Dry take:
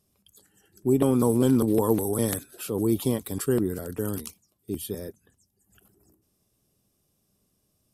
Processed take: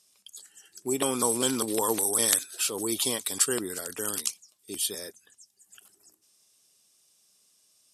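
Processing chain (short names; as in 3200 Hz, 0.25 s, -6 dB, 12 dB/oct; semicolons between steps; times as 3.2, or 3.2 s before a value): weighting filter ITU-R 468; gain +1.5 dB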